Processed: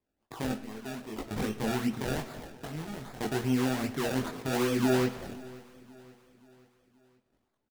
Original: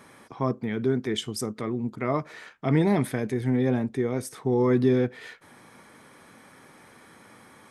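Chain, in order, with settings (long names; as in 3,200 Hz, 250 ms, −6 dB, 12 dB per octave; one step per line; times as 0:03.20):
0:00.56–0:01.31: first-order pre-emphasis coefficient 0.8
noise gate −47 dBFS, range −32 dB
0:02.65–0:03.21: guitar amp tone stack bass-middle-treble 5-5-5
brickwall limiter −20.5 dBFS, peak gain reduction 10 dB
sample-and-hold swept by an LFO 29×, swing 100% 2.5 Hz
multi-voice chorus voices 4, 0.73 Hz, delay 21 ms, depth 2.6 ms
repeating echo 528 ms, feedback 49%, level −21 dB
convolution reverb RT60 1.2 s, pre-delay 10 ms, DRR 12 dB
level +2.5 dB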